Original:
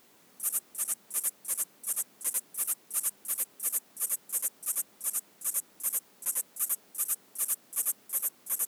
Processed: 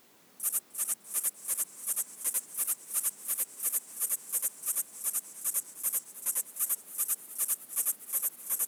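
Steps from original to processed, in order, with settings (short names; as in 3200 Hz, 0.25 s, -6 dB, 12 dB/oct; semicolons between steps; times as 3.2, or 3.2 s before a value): warbling echo 0.305 s, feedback 79%, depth 107 cents, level -17 dB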